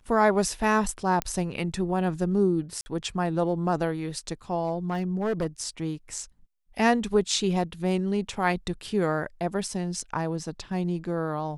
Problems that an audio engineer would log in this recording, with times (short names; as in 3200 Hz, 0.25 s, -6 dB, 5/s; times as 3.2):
1.22 pop -11 dBFS
2.81–2.86 gap 50 ms
4.63–5.47 clipped -22 dBFS